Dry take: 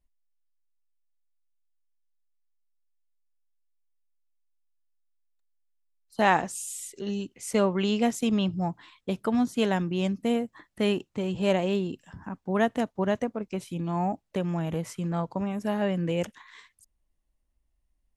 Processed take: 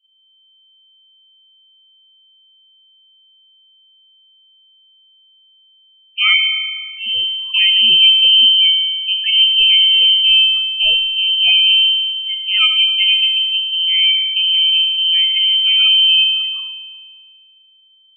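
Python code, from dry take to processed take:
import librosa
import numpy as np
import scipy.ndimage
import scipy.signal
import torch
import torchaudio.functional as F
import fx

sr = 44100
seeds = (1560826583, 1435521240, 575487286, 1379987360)

y = fx.dynamic_eq(x, sr, hz=960.0, q=7.3, threshold_db=-49.0, ratio=4.0, max_db=5)
y = fx.lpc_vocoder(y, sr, seeds[0], excitation='pitch_kept', order=10)
y = fx.echo_wet_lowpass(y, sr, ms=66, feedback_pct=50, hz=2100.0, wet_db=-24)
y = fx.rev_spring(y, sr, rt60_s=1.8, pass_ms=(36,), chirp_ms=35, drr_db=4.0)
y = fx.freq_invert(y, sr, carrier_hz=3100)
y = fx.spec_topn(y, sr, count=16)
y = y * librosa.db_to_amplitude(5.5)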